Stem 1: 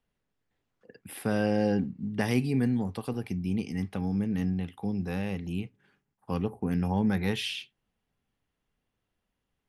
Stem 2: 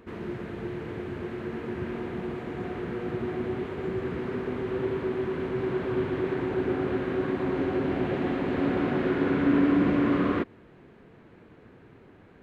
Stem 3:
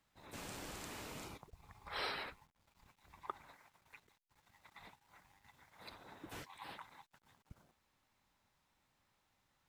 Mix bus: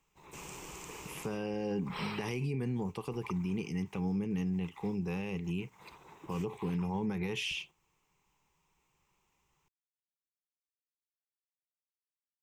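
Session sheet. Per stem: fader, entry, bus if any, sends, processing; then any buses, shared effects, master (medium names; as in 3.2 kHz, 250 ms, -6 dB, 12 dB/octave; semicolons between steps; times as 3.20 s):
-3.0 dB, 0.00 s, no send, none
mute
0.0 dB, 0.00 s, no send, peaking EQ 8.5 kHz +4.5 dB 0.38 oct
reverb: none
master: rippled EQ curve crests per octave 0.74, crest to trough 10 dB; peak limiter -26.5 dBFS, peak gain reduction 9.5 dB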